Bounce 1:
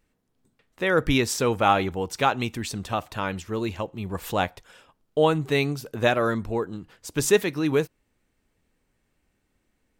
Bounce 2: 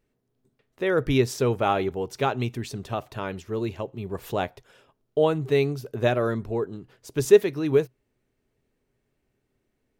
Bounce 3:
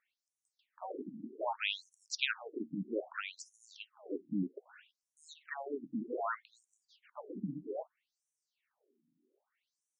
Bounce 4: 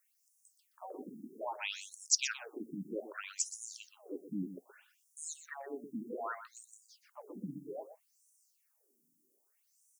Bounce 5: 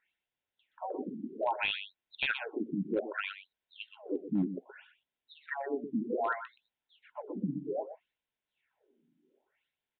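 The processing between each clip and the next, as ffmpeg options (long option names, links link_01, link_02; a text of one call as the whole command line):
ffmpeg -i in.wav -af "equalizer=frequency=125:width_type=o:width=0.33:gain=11,equalizer=frequency=250:width_type=o:width=0.33:gain=4,equalizer=frequency=400:width_type=o:width=0.33:gain=11,equalizer=frequency=630:width_type=o:width=0.33:gain=5,equalizer=frequency=8000:width_type=o:width=0.33:gain=-4,volume=-5.5dB" out.wav
ffmpeg -i in.wav -af "afftfilt=real='re*lt(hypot(re,im),0.2)':imag='im*lt(hypot(re,im),0.2)':win_size=1024:overlap=0.75,afftfilt=real='re*between(b*sr/1024,220*pow(7900/220,0.5+0.5*sin(2*PI*0.63*pts/sr))/1.41,220*pow(7900/220,0.5+0.5*sin(2*PI*0.63*pts/sr))*1.41)':imag='im*between(b*sr/1024,220*pow(7900/220,0.5+0.5*sin(2*PI*0.63*pts/sr))/1.41,220*pow(7900/220,0.5+0.5*sin(2*PI*0.63*pts/sr))*1.41)':win_size=1024:overlap=0.75,volume=3.5dB" out.wav
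ffmpeg -i in.wav -filter_complex "[0:a]aexciter=amount=14.2:drive=2.6:freq=5300,asplit=2[link_01][link_02];[link_02]adelay=122.4,volume=-11dB,highshelf=frequency=4000:gain=-2.76[link_03];[link_01][link_03]amix=inputs=2:normalize=0,volume=-3.5dB" out.wav
ffmpeg -i in.wav -af "aresample=8000,volume=31.5dB,asoftclip=hard,volume=-31.5dB,aresample=44100,asuperstop=centerf=1200:order=4:qfactor=6.3,volume=8.5dB" out.wav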